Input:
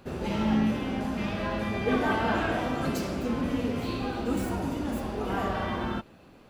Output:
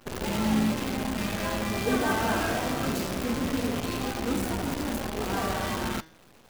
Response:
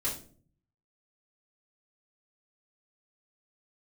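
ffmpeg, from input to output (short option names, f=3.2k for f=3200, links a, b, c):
-af "acrusher=bits=6:dc=4:mix=0:aa=0.000001,bandreject=f=160.1:t=h:w=4,bandreject=f=320.2:t=h:w=4,bandreject=f=480.3:t=h:w=4,bandreject=f=640.4:t=h:w=4,bandreject=f=800.5:t=h:w=4,bandreject=f=960.6:t=h:w=4,bandreject=f=1.1207k:t=h:w=4,bandreject=f=1.2808k:t=h:w=4,bandreject=f=1.4409k:t=h:w=4,bandreject=f=1.601k:t=h:w=4,bandreject=f=1.7611k:t=h:w=4,bandreject=f=1.9212k:t=h:w=4,bandreject=f=2.0813k:t=h:w=4,bandreject=f=2.2414k:t=h:w=4,bandreject=f=2.4015k:t=h:w=4,bandreject=f=2.5616k:t=h:w=4,bandreject=f=2.7217k:t=h:w=4,bandreject=f=2.8818k:t=h:w=4,bandreject=f=3.0419k:t=h:w=4,bandreject=f=3.202k:t=h:w=4,bandreject=f=3.3621k:t=h:w=4,bandreject=f=3.5222k:t=h:w=4,bandreject=f=3.6823k:t=h:w=4,bandreject=f=3.8424k:t=h:w=4,bandreject=f=4.0025k:t=h:w=4,bandreject=f=4.1626k:t=h:w=4,bandreject=f=4.3227k:t=h:w=4,bandreject=f=4.4828k:t=h:w=4,bandreject=f=4.6429k:t=h:w=4,bandreject=f=4.803k:t=h:w=4,bandreject=f=4.9631k:t=h:w=4,bandreject=f=5.1232k:t=h:w=4,bandreject=f=5.2833k:t=h:w=4,bandreject=f=5.4434k:t=h:w=4,bandreject=f=5.6035k:t=h:w=4,bandreject=f=5.7636k:t=h:w=4,bandreject=f=5.9237k:t=h:w=4,bandreject=f=6.0838k:t=h:w=4,bandreject=f=6.2439k:t=h:w=4,bandreject=f=6.404k:t=h:w=4"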